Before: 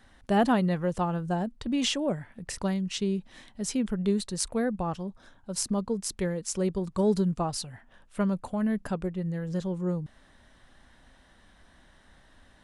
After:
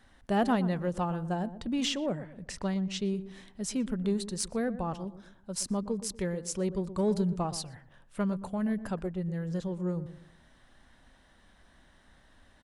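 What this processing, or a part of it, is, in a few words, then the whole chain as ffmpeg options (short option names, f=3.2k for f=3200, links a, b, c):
parallel distortion: -filter_complex "[0:a]asettb=1/sr,asplit=3[a][b][c];[a]atrim=end=1.864[d];[b]atrim=start=1.86:end=3.05,asetpts=PTS-STARTPTS,afade=t=in:d=0.004:c=qsin,afade=t=out:st=1.186:d=0.004:c=qsin,lowpass=7.6k[e];[c]atrim=start=3.046[f];[d][e]acrossfade=d=0.004:c1=hsin:c2=qsin[g];[g][f]acrossfade=d=0.004:c1=qsin:c2=hsin,asplit=2[h][i];[i]asoftclip=type=hard:threshold=-24dB,volume=-11dB[j];[h][j]amix=inputs=2:normalize=0,asplit=2[k][l];[l]adelay=120,lowpass=f=900:p=1,volume=-12dB,asplit=2[m][n];[n]adelay=120,lowpass=f=900:p=1,volume=0.37,asplit=2[o][p];[p]adelay=120,lowpass=f=900:p=1,volume=0.37,asplit=2[q][r];[r]adelay=120,lowpass=f=900:p=1,volume=0.37[s];[k][m][o][q][s]amix=inputs=5:normalize=0,volume=-5dB"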